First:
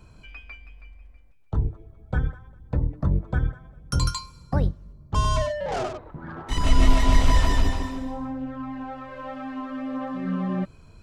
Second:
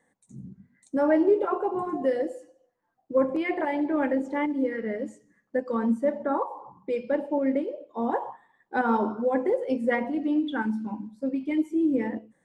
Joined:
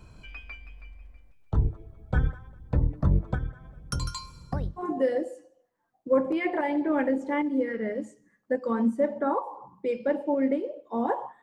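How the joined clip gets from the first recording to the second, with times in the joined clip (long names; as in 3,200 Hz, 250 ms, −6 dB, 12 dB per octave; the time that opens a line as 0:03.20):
first
0:03.34–0:04.82: downward compressor 4 to 1, threshold −28 dBFS
0:04.79: continue with second from 0:01.83, crossfade 0.06 s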